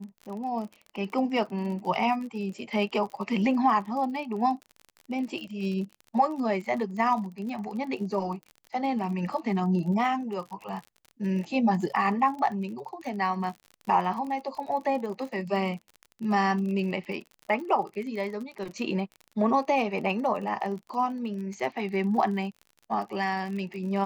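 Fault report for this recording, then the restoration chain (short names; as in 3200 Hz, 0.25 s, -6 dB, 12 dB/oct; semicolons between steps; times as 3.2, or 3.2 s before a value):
crackle 39/s -36 dBFS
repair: de-click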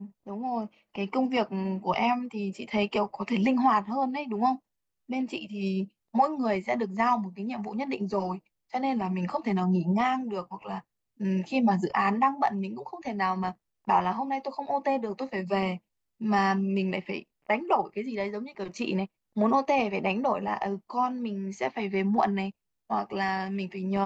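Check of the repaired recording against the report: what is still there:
none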